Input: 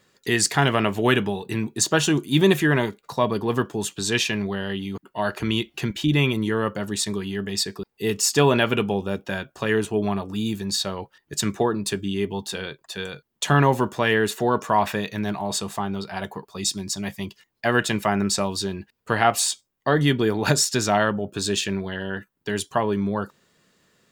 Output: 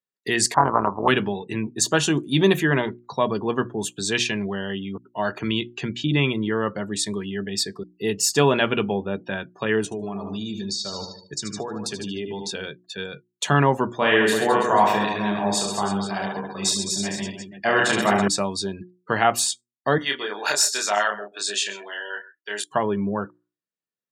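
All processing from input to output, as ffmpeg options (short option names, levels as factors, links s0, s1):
-filter_complex "[0:a]asettb=1/sr,asplit=3[s0][s1][s2];[s0]atrim=end=0.544[s3];[s1]atrim=start=0.54:end=1.08,asetpts=PTS-STARTPTS,afade=t=in:d=0.004:c=qsin,afade=t=out:st=0.536:d=0.004:c=qsin,aeval=exprs='if(lt(val(0),0),0.708*val(0),val(0))':c=same,lowpass=f=1000:t=q:w=6.4,tremolo=f=180:d=0.788[s4];[s2]atrim=start=1.076[s5];[s3][s4]acrossfade=d=0.004:c1=hsin:c2=qsin[s6];[s6][s5]acrossfade=d=0.004:c1=qsin:c2=hsin,asettb=1/sr,asplit=3[s7][s8][s9];[s7]atrim=end=9.844[s10];[s8]atrim=start=9.84:end=12.51,asetpts=PTS-STARTPTS,afade=t=in:d=0.004:c=qsin,afade=t=out:st=2.666:d=0.004:c=qsin,equalizer=f=5400:t=o:w=0.89:g=10,aecho=1:1:75|150|225|300|375|450|525:0.335|0.198|0.117|0.0688|0.0406|0.0239|0.0141,atrim=end_sample=117747,acompressor=threshold=0.0562:ratio=6:attack=3.2:release=140:knee=1:detection=peak[s11];[s9]atrim=start=12.506[s12];[s10][s11]acrossfade=d=0.004:c1=hsin:c2=qsin[s13];[s13][s12]acrossfade=d=0.004:c1=qsin:c2=hsin,asettb=1/sr,asplit=3[s14][s15][s16];[s14]atrim=end=13.984[s17];[s15]atrim=start=13.98:end=18.28,asetpts=PTS-STARTPTS,afade=t=in:d=0.004:c=qsin,afade=t=out:st=4.296:d=0.004:c=qsin,highpass=f=160:p=1,aecho=1:1:30|72|130.8|213.1|328.4|489.7:0.794|0.631|0.501|0.398|0.316|0.251,atrim=end_sample=189630[s18];[s16]atrim=start=18.276[s19];[s17][s18]acrossfade=d=0.004:c1=hsin:c2=qsin[s20];[s20][s19]acrossfade=d=0.004:c1=qsin:c2=hsin,asettb=1/sr,asplit=3[s21][s22][s23];[s21]atrim=end=19.984[s24];[s22]atrim=start=19.98:end=22.64,asetpts=PTS-STARTPTS,afade=t=in:d=0.004:c=qsin,afade=t=out:st=2.656:d=0.004:c=qsin,highpass=740,asplit=2[s25][s26];[s26]adelay=29,volume=0.708[s27];[s25][s27]amix=inputs=2:normalize=0,atrim=end_sample=117306,aecho=1:1:131:0.178,atrim=end_sample=117306[s28];[s23]atrim=start=22.636[s29];[s24][s28]acrossfade=d=0.004:c1=hsin:c2=qsin[s30];[s30][s29]acrossfade=d=0.004:c1=qsin:c2=hsin,highpass=110,afftdn=nr=36:nf=-40,bandreject=f=60:t=h:w=6,bandreject=f=120:t=h:w=6,bandreject=f=180:t=h:w=6,bandreject=f=240:t=h:w=6,bandreject=f=300:t=h:w=6,bandreject=f=360:t=h:w=6"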